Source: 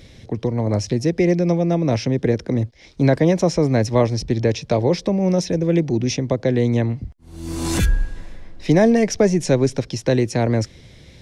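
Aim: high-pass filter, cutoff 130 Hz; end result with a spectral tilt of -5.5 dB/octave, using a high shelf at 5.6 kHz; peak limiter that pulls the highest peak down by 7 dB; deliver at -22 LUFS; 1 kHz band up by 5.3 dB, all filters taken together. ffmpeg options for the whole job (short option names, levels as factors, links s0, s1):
-af "highpass=130,equalizer=f=1000:t=o:g=7.5,highshelf=f=5600:g=6,volume=0.841,alimiter=limit=0.299:level=0:latency=1"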